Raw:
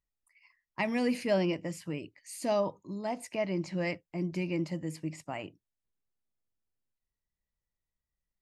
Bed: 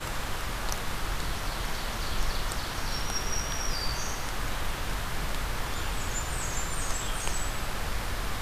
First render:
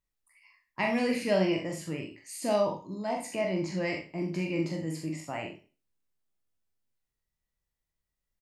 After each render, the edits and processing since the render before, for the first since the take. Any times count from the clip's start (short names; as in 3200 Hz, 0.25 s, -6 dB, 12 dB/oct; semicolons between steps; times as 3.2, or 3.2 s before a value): spectral trails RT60 0.36 s; early reflections 43 ms -5 dB, 69 ms -10.5 dB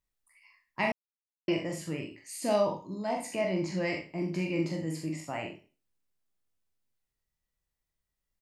0.92–1.48 mute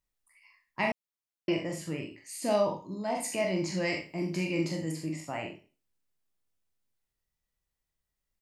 3.15–4.92 high shelf 3900 Hz +9 dB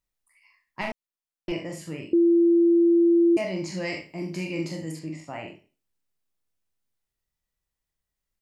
0.81–1.52 half-wave gain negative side -7 dB; 2.13–3.37 bleep 340 Hz -15 dBFS; 4.99–5.48 air absorption 65 m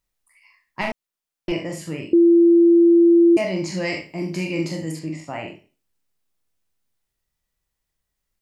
gain +5.5 dB